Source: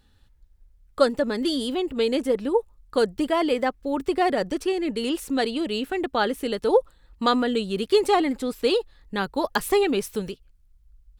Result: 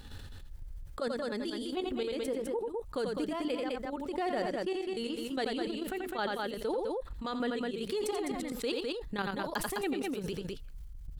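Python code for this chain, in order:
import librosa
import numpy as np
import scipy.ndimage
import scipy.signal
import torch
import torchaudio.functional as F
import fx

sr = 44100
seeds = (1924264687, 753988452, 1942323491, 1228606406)

y = fx.level_steps(x, sr, step_db=12)
y = fx.step_gate(y, sr, bpm=148, pattern='.x...xxx..x.', floor_db=-12.0, edge_ms=4.5)
y = fx.echo_multitap(y, sr, ms=(86, 206), db=(-8.5, -8.0))
y = fx.env_flatten(y, sr, amount_pct=70)
y = y * librosa.db_to_amplitude(-9.0)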